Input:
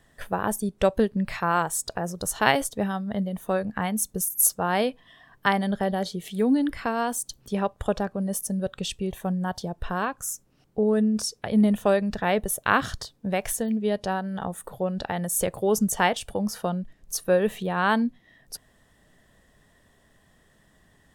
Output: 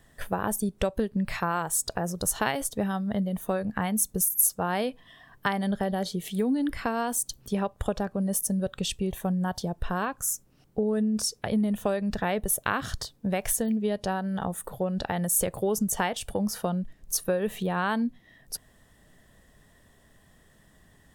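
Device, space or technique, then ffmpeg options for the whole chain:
ASMR close-microphone chain: -af "lowshelf=f=200:g=3.5,acompressor=threshold=-23dB:ratio=5,highshelf=f=9.7k:g=6.5"

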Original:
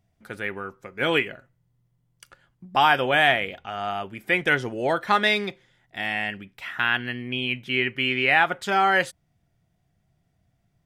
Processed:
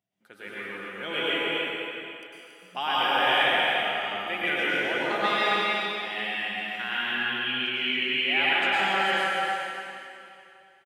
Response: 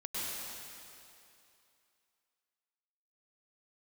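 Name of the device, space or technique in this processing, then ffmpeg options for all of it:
stadium PA: -filter_complex "[0:a]highpass=220,equalizer=f=3k:t=o:w=0.49:g=6,aecho=1:1:163.3|277:0.282|0.562[a];[1:a]atrim=start_sample=2205[b];[a][b]afir=irnorm=-1:irlink=0,volume=-8dB"

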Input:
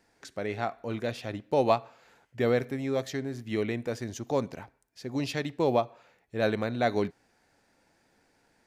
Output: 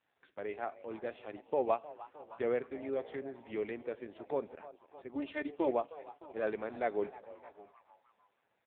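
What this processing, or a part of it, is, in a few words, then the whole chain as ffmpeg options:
satellite phone: -filter_complex "[0:a]adynamicequalizer=threshold=0.00708:dfrequency=400:dqfactor=3.2:tfrequency=400:tqfactor=3.2:attack=5:release=100:ratio=0.375:range=2:mode=boostabove:tftype=bell,asettb=1/sr,asplit=3[a][b][c];[a]atrim=end=5.154[d];[b]atrim=start=5.15:end=5.71,asetpts=PTS-STARTPTS,afade=t=in:d=0.004:c=qsin,afade=t=out:st=0.556:d=0.004:c=qsin,aecho=1:1:3.3:0.92,atrim=end_sample=24696[e];[c]atrim=start=5.706[f];[d][e]acrossfade=d=0.004:c1=hsin:c2=qsin[g];[g][f]acrossfade=d=0.004:c1=qsin:c2=hsin,asplit=5[h][i][j][k][l];[i]adelay=308,afreqshift=150,volume=-17.5dB[m];[j]adelay=616,afreqshift=300,volume=-24.2dB[n];[k]adelay=924,afreqshift=450,volume=-31dB[o];[l]adelay=1232,afreqshift=600,volume=-37.7dB[p];[h][m][n][o][p]amix=inputs=5:normalize=0,highpass=320,lowpass=3.2k,aecho=1:1:614:0.0891,volume=-6.5dB" -ar 8000 -c:a libopencore_amrnb -b:a 5900

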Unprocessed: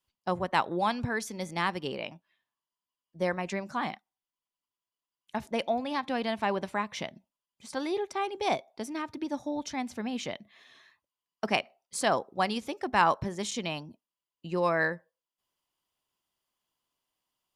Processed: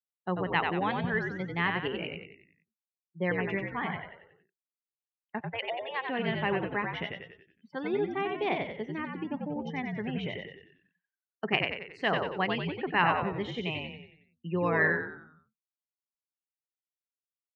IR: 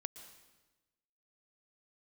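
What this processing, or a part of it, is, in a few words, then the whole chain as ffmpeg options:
frequency-shifting delay pedal into a guitar cabinet: -filter_complex "[0:a]asettb=1/sr,asplit=3[a][b][c];[a]atrim=end=5.404[d];[b]atrim=start=5.4:end=6.09,asetpts=PTS-STARTPTS,afade=t=in:d=0.004:c=qsin,afade=t=out:st=0.686:d=0.004:c=qsin,highpass=f=610:w=0.5412,highpass=f=610:w=1.3066[e];[c]atrim=start=6.086[f];[d][e]acrossfade=d=0.004:c1=hsin:c2=qsin[g];[g][f]acrossfade=d=0.004:c1=qsin:c2=hsin,afftdn=nr=31:nf=-42,asplit=7[h][i][j][k][l][m][n];[i]adelay=92,afreqshift=-65,volume=-4dB[o];[j]adelay=184,afreqshift=-130,volume=-10.7dB[p];[k]adelay=276,afreqshift=-195,volume=-17.5dB[q];[l]adelay=368,afreqshift=-260,volume=-24.2dB[r];[m]adelay=460,afreqshift=-325,volume=-31dB[s];[n]adelay=552,afreqshift=-390,volume=-37.7dB[t];[h][o][p][q][r][s][t]amix=inputs=7:normalize=0,highpass=100,equalizer=f=170:t=q:w=4:g=9,equalizer=f=410:t=q:w=4:g=7,equalizer=f=620:t=q:w=4:g=-3,equalizer=f=1.9k:t=q:w=4:g=9,equalizer=f=2.8k:t=q:w=4:g=7,lowpass=f=3.4k:w=0.5412,lowpass=f=3.4k:w=1.3066,volume=-4dB"

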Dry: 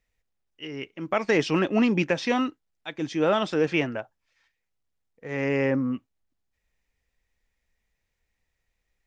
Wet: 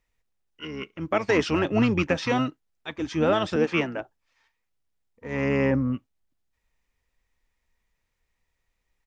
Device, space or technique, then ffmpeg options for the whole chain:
octave pedal: -filter_complex "[0:a]asettb=1/sr,asplit=3[a][b][c];[a]atrim=end=3.564[d];[b]atrim=start=3.56:end=4,asetpts=PTS-STARTPTS,afade=t=in:d=0.004:c=qsin,afade=t=out:st=0.436:d=0.004:c=qsin,highpass=f=230:w=0.5412,highpass=f=230:w=1.3066[e];[c]atrim=start=3.996[f];[d][e]acrossfade=d=0.004:c1=hsin:c2=qsin[g];[g][f]acrossfade=d=0.004:c1=qsin:c2=hsin,asplit=2[h][i];[i]asetrate=22050,aresample=44100,atempo=2,volume=-8dB[j];[h][j]amix=inputs=2:normalize=0"

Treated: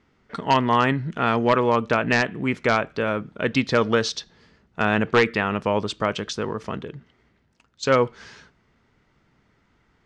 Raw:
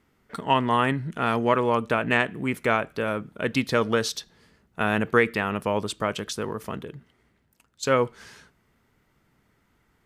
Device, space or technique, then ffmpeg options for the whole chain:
synthesiser wavefolder: -af "aeval=exprs='0.282*(abs(mod(val(0)/0.282+3,4)-2)-1)':c=same,lowpass=f=6.3k:w=0.5412,lowpass=f=6.3k:w=1.3066,volume=3dB"

